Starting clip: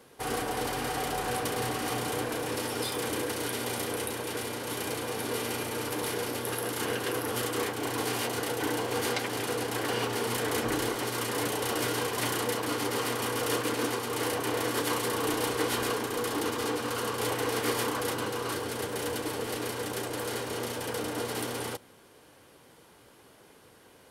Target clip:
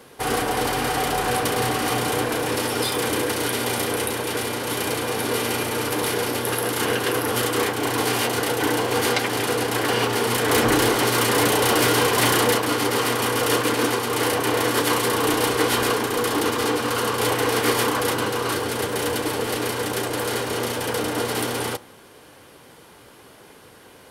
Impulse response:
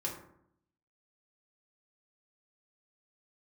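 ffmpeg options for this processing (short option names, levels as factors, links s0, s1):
-filter_complex "[0:a]asettb=1/sr,asplit=3[s0][s1][s2];[s0]atrim=end=10.494[s3];[s1]atrim=start=10.49:end=12.58,asetpts=PTS-STARTPTS,afade=t=in:d=0.004:c=qsin,afade=t=out:st=2.086:d=0.004:c=qsin,aeval=exprs='0.158*(cos(1*acos(clip(val(0)/0.158,-1,1)))-cos(1*PI/2))+0.02*(cos(5*acos(clip(val(0)/0.158,-1,1)))-cos(5*PI/2))':c=same[s4];[s2]atrim=start=12.576[s5];[s3][s4]acrossfade=d=0.004:c1=hsin:c2=qsin[s6];[s6][s5]acrossfade=d=0.004:c1=qsin:c2=hsin,asplit=2[s7][s8];[s8]highpass=690[s9];[1:a]atrim=start_sample=2205,lowpass=f=7500:w=0.5412,lowpass=f=7500:w=1.3066[s10];[s9][s10]afir=irnorm=-1:irlink=0,volume=0.158[s11];[s7][s11]amix=inputs=2:normalize=0,volume=2.66"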